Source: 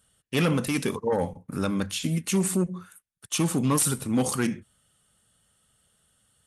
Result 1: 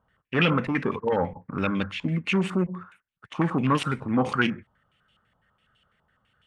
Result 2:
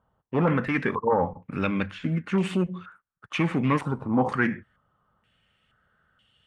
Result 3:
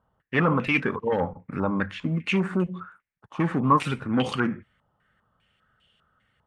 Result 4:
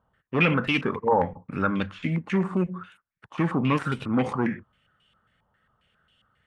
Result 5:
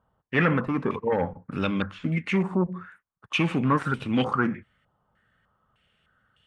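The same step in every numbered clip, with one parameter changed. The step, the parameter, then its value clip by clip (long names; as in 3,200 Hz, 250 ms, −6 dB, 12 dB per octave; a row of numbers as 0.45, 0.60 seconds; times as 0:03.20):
low-pass on a step sequencer, speed: 12, 2.1, 5, 7.4, 3.3 Hertz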